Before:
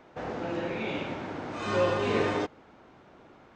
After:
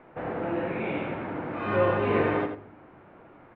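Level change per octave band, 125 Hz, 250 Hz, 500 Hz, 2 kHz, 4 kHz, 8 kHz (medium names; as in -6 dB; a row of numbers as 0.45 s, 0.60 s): +3.5 dB, +3.0 dB, +2.5 dB, +2.0 dB, -7.0 dB, under -30 dB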